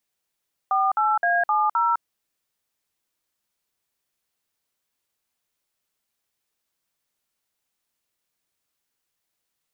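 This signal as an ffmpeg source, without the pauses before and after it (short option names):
-f lavfi -i "aevalsrc='0.0944*clip(min(mod(t,0.26),0.207-mod(t,0.26))/0.002,0,1)*(eq(floor(t/0.26),0)*(sin(2*PI*770*mod(t,0.26))+sin(2*PI*1209*mod(t,0.26)))+eq(floor(t/0.26),1)*(sin(2*PI*852*mod(t,0.26))+sin(2*PI*1336*mod(t,0.26)))+eq(floor(t/0.26),2)*(sin(2*PI*697*mod(t,0.26))+sin(2*PI*1633*mod(t,0.26)))+eq(floor(t/0.26),3)*(sin(2*PI*852*mod(t,0.26))+sin(2*PI*1209*mod(t,0.26)))+eq(floor(t/0.26),4)*(sin(2*PI*941*mod(t,0.26))+sin(2*PI*1336*mod(t,0.26))))':d=1.3:s=44100"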